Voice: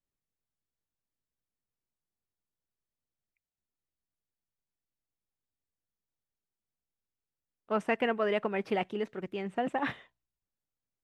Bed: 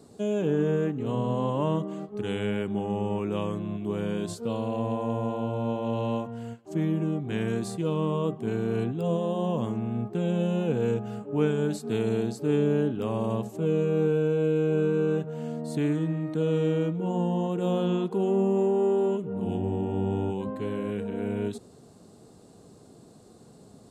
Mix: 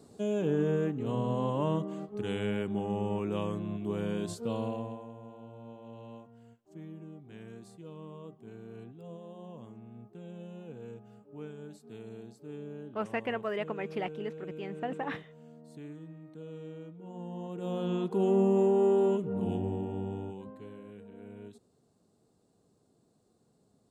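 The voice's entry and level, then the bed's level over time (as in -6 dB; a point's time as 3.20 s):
5.25 s, -4.5 dB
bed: 4.66 s -3.5 dB
5.13 s -19 dB
16.94 s -19 dB
18.25 s -1 dB
19.36 s -1 dB
20.86 s -17.5 dB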